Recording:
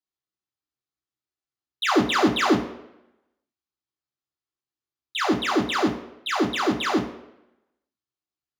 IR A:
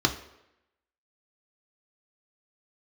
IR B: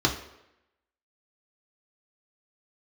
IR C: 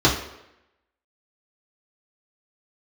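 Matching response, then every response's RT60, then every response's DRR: B; 0.85 s, 0.85 s, 0.85 s; 4.0 dB, 0.0 dB, -6.0 dB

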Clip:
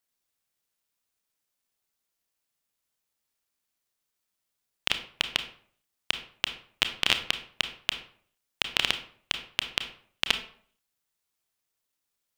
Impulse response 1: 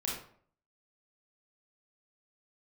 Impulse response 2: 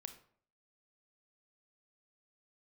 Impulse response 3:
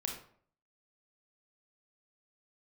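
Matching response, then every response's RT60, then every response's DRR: 2; 0.55 s, 0.55 s, 0.55 s; -4.5 dB, 8.0 dB, 1.0 dB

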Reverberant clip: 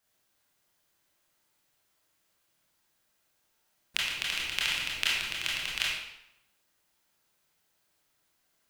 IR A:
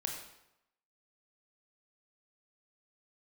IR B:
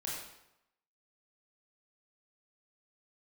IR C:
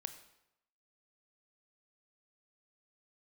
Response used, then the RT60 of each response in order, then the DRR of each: B; 0.85 s, 0.85 s, 0.85 s; 1.0 dB, -5.5 dB, 9.0 dB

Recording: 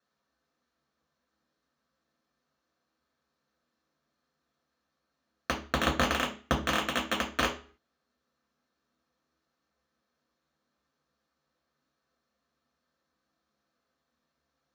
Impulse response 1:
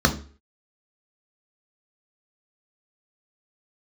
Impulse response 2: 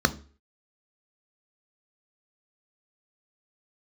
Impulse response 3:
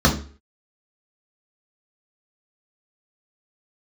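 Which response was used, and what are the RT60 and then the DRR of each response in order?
3; 0.40 s, 0.40 s, 0.40 s; 3.5 dB, 10.5 dB, -2.5 dB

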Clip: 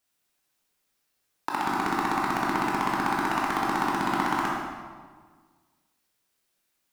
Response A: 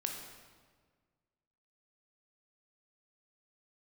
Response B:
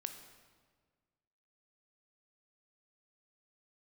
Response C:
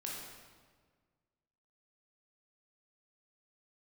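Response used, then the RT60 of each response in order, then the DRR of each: C; 1.6 s, 1.6 s, 1.6 s; 1.5 dB, 6.5 dB, -4.0 dB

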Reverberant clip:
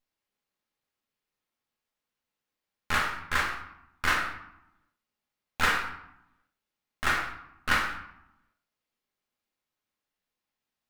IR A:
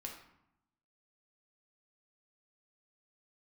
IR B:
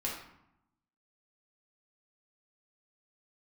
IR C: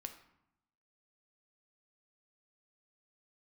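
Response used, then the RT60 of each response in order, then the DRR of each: A; 0.80 s, 0.80 s, 0.80 s; -0.5 dB, -5.0 dB, 6.0 dB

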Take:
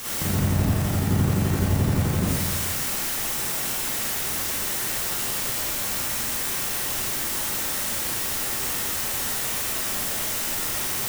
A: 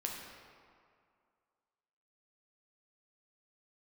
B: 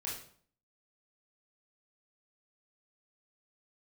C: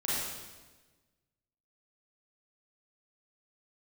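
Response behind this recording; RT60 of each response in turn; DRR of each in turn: C; 2.2 s, 0.55 s, 1.3 s; -1.0 dB, -5.5 dB, -9.0 dB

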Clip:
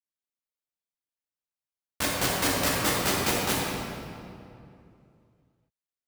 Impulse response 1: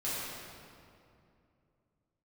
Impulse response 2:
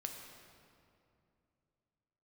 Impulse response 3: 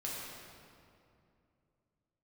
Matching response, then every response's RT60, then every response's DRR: 3; 2.6 s, 2.6 s, 2.6 s; -11.0 dB, 2.0 dB, -6.0 dB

